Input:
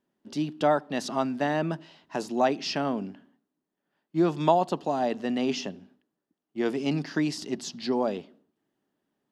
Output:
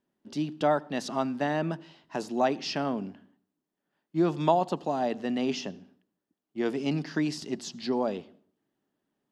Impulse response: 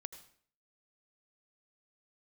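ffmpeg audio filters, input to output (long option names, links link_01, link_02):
-filter_complex "[0:a]asplit=2[link_01][link_02];[link_02]lowpass=9400[link_03];[1:a]atrim=start_sample=2205,lowshelf=frequency=190:gain=10[link_04];[link_03][link_04]afir=irnorm=-1:irlink=0,volume=-9.5dB[link_05];[link_01][link_05]amix=inputs=2:normalize=0,volume=-3.5dB"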